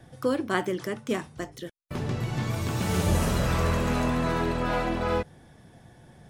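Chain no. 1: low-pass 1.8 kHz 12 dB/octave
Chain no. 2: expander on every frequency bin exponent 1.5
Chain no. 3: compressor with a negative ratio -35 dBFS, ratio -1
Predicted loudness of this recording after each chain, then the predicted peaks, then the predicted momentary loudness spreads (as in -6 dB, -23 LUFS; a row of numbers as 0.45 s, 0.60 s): -28.5 LUFS, -31.0 LUFS, -36.0 LUFS; -10.5 dBFS, -11.0 dBFS, -15.0 dBFS; 12 LU, 15 LU, 10 LU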